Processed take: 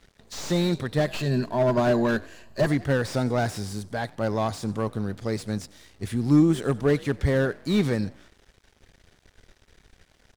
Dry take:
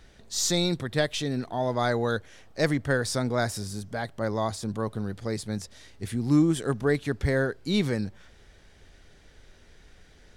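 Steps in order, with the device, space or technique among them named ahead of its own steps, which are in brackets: 1.06–2.67 ripple EQ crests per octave 1.4, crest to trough 13 dB; frequency-shifting echo 92 ms, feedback 50%, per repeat +43 Hz, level -23 dB; early transistor amplifier (crossover distortion -53.5 dBFS; slew limiter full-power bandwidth 58 Hz); gain +3 dB

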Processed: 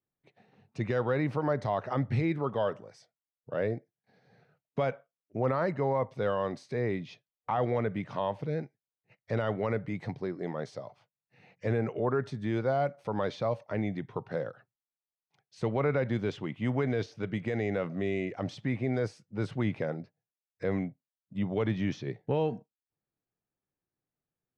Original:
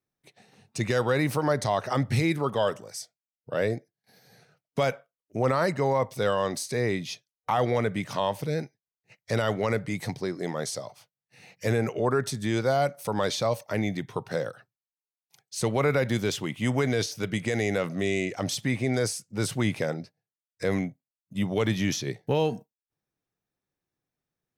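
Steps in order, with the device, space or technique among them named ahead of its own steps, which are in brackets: phone in a pocket (LPF 3400 Hz 12 dB/oct; high shelf 2200 Hz -8.5 dB); gain -3.5 dB

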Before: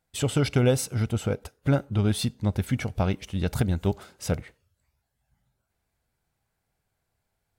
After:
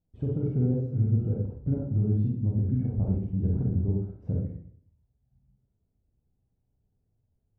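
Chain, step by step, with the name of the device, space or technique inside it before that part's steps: television next door (compressor 3:1, threshold -28 dBFS, peak gain reduction 9.5 dB; LPF 290 Hz 12 dB/oct; reverb RT60 0.60 s, pre-delay 32 ms, DRR -2.5 dB); gain +1.5 dB

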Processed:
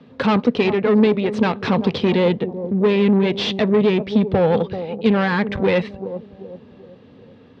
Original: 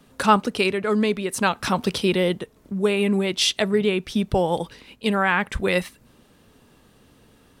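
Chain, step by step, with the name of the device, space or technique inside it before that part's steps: analogue delay pedal into a guitar amplifier (analogue delay 0.385 s, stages 2048, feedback 41%, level -14 dB; tube stage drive 22 dB, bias 0.6; speaker cabinet 92–3900 Hz, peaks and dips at 98 Hz +7 dB, 150 Hz +5 dB, 240 Hz +8 dB, 480 Hz +8 dB, 1400 Hz -4 dB, 3000 Hz -3 dB); gain +7 dB

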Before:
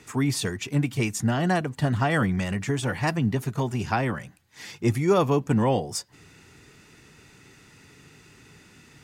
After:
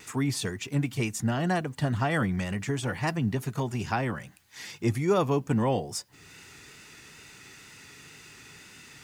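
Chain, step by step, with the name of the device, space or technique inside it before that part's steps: noise-reduction cassette on a plain deck (mismatched tape noise reduction encoder only; wow and flutter 28 cents; white noise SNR 42 dB); gain -3.5 dB

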